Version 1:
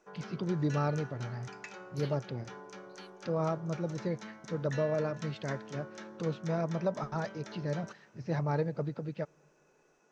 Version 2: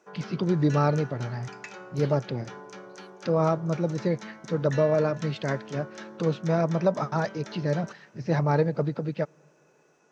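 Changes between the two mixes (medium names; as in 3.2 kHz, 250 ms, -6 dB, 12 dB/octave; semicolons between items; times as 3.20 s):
first voice +8.5 dB; background +4.5 dB; master: add high-pass 110 Hz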